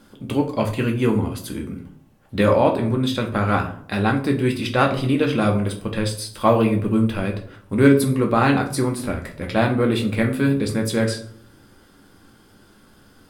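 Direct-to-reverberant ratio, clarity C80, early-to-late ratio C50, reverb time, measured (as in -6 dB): 1.5 dB, 14.5 dB, 11.0 dB, 0.60 s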